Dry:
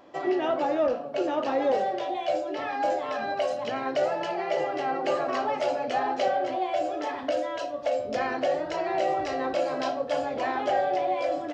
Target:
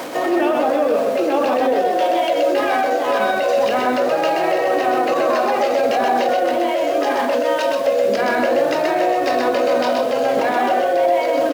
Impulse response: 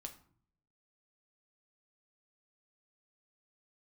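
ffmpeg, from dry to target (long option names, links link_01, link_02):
-filter_complex "[0:a]aeval=exprs='val(0)+0.5*0.00891*sgn(val(0))':channel_layout=same,highpass=200,bandreject=frequency=50:width_type=h:width=6,bandreject=frequency=100:width_type=h:width=6,bandreject=frequency=150:width_type=h:width=6,bandreject=frequency=200:width_type=h:width=6,bandreject=frequency=250:width_type=h:width=6,bandreject=frequency=300:width_type=h:width=6,bandreject=frequency=350:width_type=h:width=6,areverse,acompressor=mode=upward:threshold=-27dB:ratio=2.5,areverse,alimiter=limit=-24dB:level=0:latency=1:release=34,acontrast=45,acrusher=bits=8:mix=0:aa=0.000001,asetrate=41625,aresample=44100,atempo=1.05946,asplit=2[link_01][link_02];[link_02]aecho=0:1:127:0.668[link_03];[link_01][link_03]amix=inputs=2:normalize=0,volume=6.5dB"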